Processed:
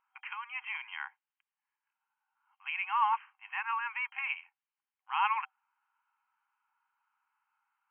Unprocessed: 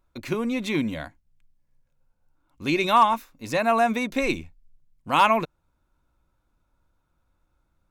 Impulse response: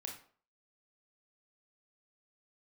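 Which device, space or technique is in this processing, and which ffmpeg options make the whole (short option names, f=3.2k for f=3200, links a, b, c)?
compression on the reversed sound: -af "areverse,acompressor=threshold=-26dB:ratio=4,areverse,afftfilt=real='re*between(b*sr/4096,770,3200)':imag='im*between(b*sr/4096,770,3200)':win_size=4096:overlap=0.75"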